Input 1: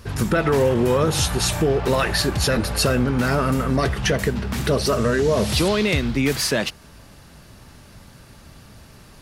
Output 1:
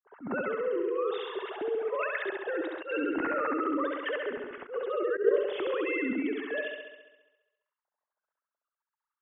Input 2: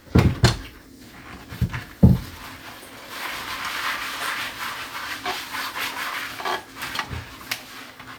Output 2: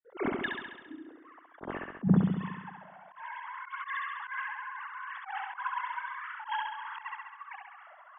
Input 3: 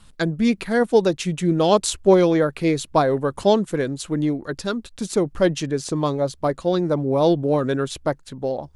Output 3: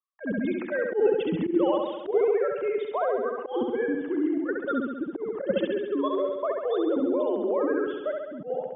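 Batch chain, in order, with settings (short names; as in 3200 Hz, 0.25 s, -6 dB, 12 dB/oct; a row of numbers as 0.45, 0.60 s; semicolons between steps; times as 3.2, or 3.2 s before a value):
sine-wave speech; notch 2400 Hz, Q 9.2; low-pass opened by the level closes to 890 Hz, open at -13 dBFS; in parallel at 0 dB: compressor 20:1, threshold -25 dBFS; on the sum: vibrato 0.83 Hz 28 cents; gate with hold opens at -45 dBFS; dynamic EQ 750 Hz, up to -3 dB, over -29 dBFS, Q 1.2; level quantiser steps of 12 dB; on a send: flutter echo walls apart 11.6 m, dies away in 1.1 s; on the sum: auto swell 0.115 s; normalise peaks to -12 dBFS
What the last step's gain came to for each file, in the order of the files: -8.0, -7.0, -3.0 dB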